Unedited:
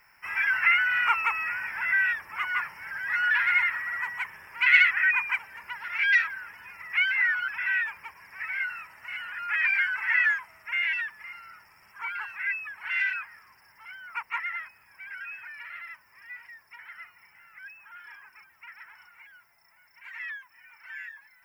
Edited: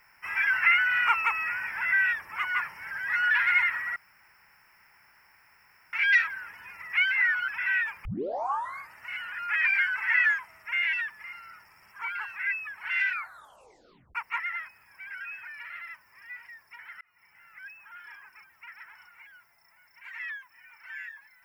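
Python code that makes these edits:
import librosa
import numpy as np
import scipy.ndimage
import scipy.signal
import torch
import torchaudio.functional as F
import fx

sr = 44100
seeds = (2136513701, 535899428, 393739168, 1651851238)

y = fx.edit(x, sr, fx.room_tone_fill(start_s=3.96, length_s=1.97),
    fx.tape_start(start_s=8.05, length_s=0.88),
    fx.tape_stop(start_s=13.09, length_s=1.06),
    fx.fade_in_span(start_s=17.01, length_s=0.62, curve='qsin'), tone=tone)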